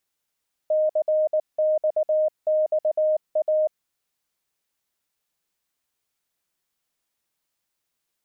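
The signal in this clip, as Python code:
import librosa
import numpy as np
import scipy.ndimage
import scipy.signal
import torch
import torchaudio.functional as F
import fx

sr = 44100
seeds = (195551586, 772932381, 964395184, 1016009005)

y = fx.morse(sr, text='CXXA', wpm=19, hz=619.0, level_db=-17.5)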